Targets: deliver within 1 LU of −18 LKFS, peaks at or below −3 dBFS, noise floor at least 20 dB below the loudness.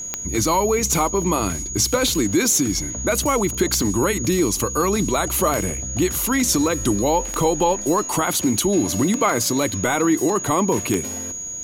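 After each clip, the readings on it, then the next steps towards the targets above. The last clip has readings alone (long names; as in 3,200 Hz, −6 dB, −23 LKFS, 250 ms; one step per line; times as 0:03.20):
number of clicks 7; interfering tone 6,700 Hz; level of the tone −28 dBFS; integrated loudness −20.0 LKFS; sample peak −5.0 dBFS; target loudness −18.0 LKFS
→ click removal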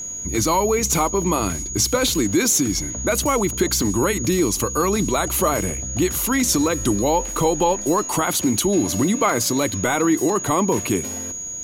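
number of clicks 0; interfering tone 6,700 Hz; level of the tone −28 dBFS
→ notch filter 6,700 Hz, Q 30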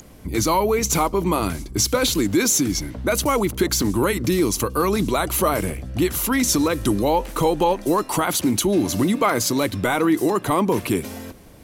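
interfering tone none found; integrated loudness −20.5 LKFS; sample peak −8.0 dBFS; target loudness −18.0 LKFS
→ level +2.5 dB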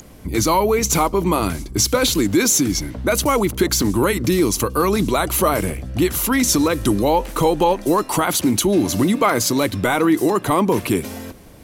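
integrated loudness −18.0 LKFS; sample peak −5.5 dBFS; background noise floor −39 dBFS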